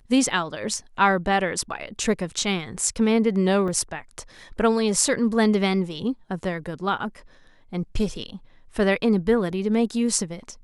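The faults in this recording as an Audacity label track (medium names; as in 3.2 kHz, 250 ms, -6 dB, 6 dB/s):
3.680000	3.680000	dropout 3.1 ms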